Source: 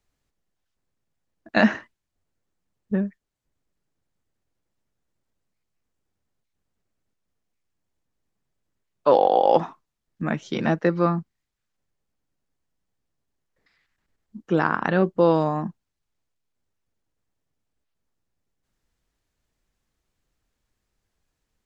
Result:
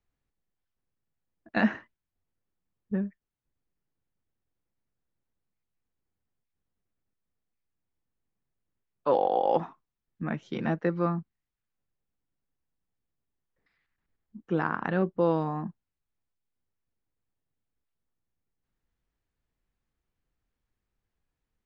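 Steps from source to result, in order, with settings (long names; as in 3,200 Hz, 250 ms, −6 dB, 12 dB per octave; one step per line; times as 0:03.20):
bass and treble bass +2 dB, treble −10 dB
notch filter 610 Hz, Q 17
level −7 dB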